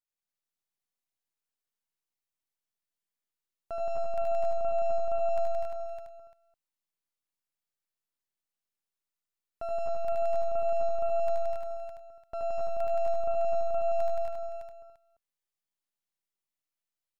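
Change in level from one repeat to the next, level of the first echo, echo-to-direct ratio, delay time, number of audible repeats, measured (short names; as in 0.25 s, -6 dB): no steady repeat, -3.5 dB, 3.5 dB, 76 ms, 9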